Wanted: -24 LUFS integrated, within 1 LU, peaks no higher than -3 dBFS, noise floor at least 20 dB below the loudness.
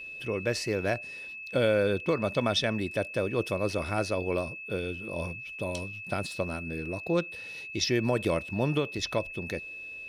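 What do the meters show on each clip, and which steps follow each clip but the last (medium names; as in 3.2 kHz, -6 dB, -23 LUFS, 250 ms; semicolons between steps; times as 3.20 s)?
tick rate 19 per s; steady tone 2.6 kHz; tone level -39 dBFS; loudness -30.5 LUFS; peak level -15.0 dBFS; loudness target -24.0 LUFS
-> de-click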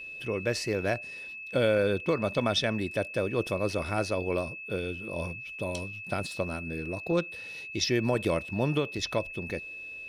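tick rate 0 per s; steady tone 2.6 kHz; tone level -39 dBFS
-> band-stop 2.6 kHz, Q 30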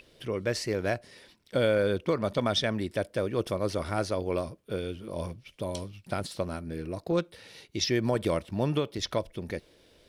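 steady tone not found; loudness -31.0 LUFS; peak level -15.0 dBFS; loudness target -24.0 LUFS
-> trim +7 dB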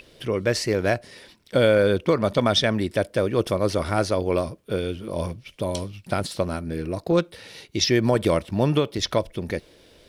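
loudness -24.0 LUFS; peak level -8.0 dBFS; noise floor -56 dBFS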